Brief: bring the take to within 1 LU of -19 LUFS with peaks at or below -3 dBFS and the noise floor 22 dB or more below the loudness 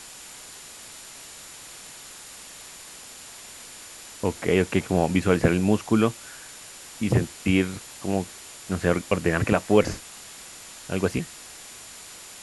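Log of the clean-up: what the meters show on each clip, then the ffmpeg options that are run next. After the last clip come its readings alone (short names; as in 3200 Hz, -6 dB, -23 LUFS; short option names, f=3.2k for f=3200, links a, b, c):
steady tone 7100 Hz; tone level -49 dBFS; noise floor -44 dBFS; noise floor target -47 dBFS; loudness -24.5 LUFS; peak -4.0 dBFS; loudness target -19.0 LUFS
-> -af "bandreject=f=7.1k:w=30"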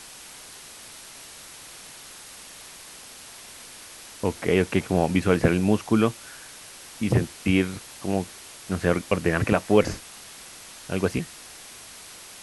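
steady tone none; noise floor -44 dBFS; noise floor target -47 dBFS
-> -af "afftdn=nr=6:nf=-44"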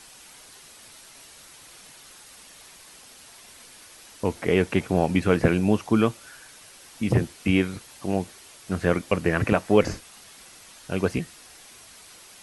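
noise floor -49 dBFS; loudness -24.5 LUFS; peak -4.0 dBFS; loudness target -19.0 LUFS
-> -af "volume=5.5dB,alimiter=limit=-3dB:level=0:latency=1"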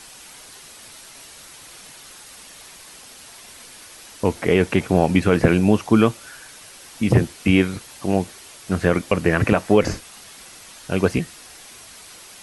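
loudness -19.5 LUFS; peak -3.0 dBFS; noise floor -43 dBFS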